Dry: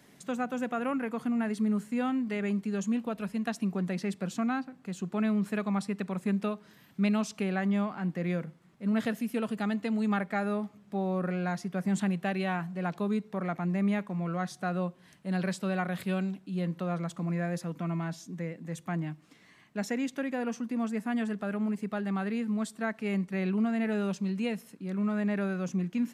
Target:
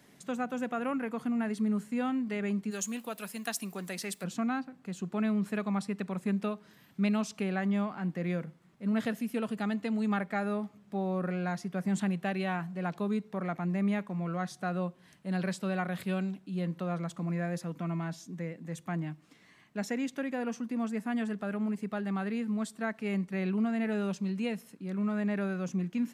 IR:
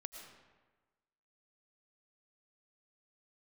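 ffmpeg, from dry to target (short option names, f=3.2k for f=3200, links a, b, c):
-filter_complex "[0:a]asplit=3[a][b][c];[a]afade=t=out:st=2.7:d=0.02[d];[b]aemphasis=mode=production:type=riaa,afade=t=in:st=2.7:d=0.02,afade=t=out:st=4.23:d=0.02[e];[c]afade=t=in:st=4.23:d=0.02[f];[d][e][f]amix=inputs=3:normalize=0,volume=-1.5dB"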